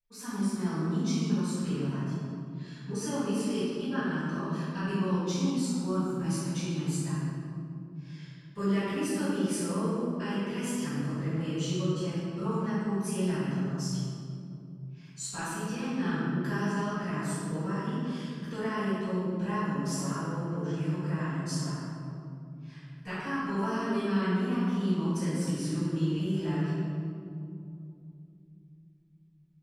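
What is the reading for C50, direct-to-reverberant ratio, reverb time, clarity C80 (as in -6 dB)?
-4.5 dB, -17.0 dB, 2.6 s, -1.5 dB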